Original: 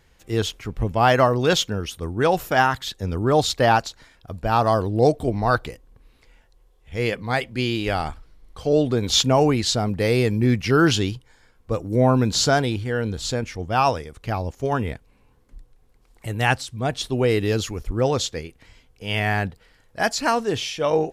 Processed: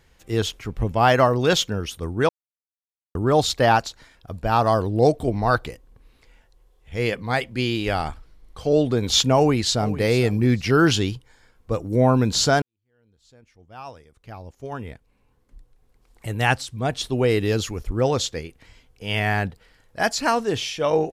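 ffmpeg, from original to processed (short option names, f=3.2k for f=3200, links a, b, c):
-filter_complex "[0:a]asplit=2[a][b];[b]afade=t=in:st=9.35:d=0.01,afade=t=out:st=9.98:d=0.01,aecho=0:1:450|900:0.16788|0.0335761[c];[a][c]amix=inputs=2:normalize=0,asplit=4[d][e][f][g];[d]atrim=end=2.29,asetpts=PTS-STARTPTS,afade=t=out:st=2.286:d=0.004:c=hsin[h];[e]atrim=start=2.29:end=3.15,asetpts=PTS-STARTPTS,volume=0[i];[f]atrim=start=3.15:end=12.62,asetpts=PTS-STARTPTS,afade=t=in:d=0.004:c=hsin,afade=t=out:st=9.466:d=0.004:c=hsin[j];[g]atrim=start=12.62,asetpts=PTS-STARTPTS,afade=t=in:d=3.67:c=qua[k];[h][i][j][k]concat=n=4:v=0:a=1"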